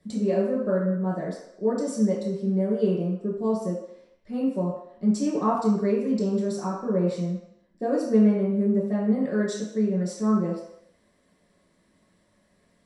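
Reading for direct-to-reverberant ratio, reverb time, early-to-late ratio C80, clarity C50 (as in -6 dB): -6.5 dB, 0.75 s, 6.0 dB, 2.5 dB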